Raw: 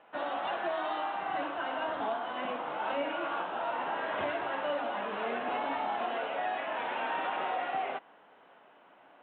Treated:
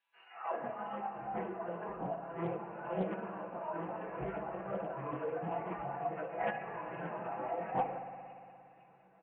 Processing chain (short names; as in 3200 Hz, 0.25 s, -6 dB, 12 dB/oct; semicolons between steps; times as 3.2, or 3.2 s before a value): notches 60/120/180/240/300 Hz; reverb removal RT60 1.7 s; tilt shelf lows +8.5 dB, about 920 Hz; comb 4 ms, depth 70%; high-pass sweep 3800 Hz -> 69 Hz, 0.25–0.82; chorus voices 6, 0.55 Hz, delay 22 ms, depth 3 ms; formant-preserving pitch shift -7 st; air absorption 78 m; thin delay 0.506 s, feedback 53%, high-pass 3700 Hz, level -6 dB; spring tank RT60 2.6 s, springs 58 ms, chirp 75 ms, DRR 7 dB; Doppler distortion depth 0.38 ms; gain -3.5 dB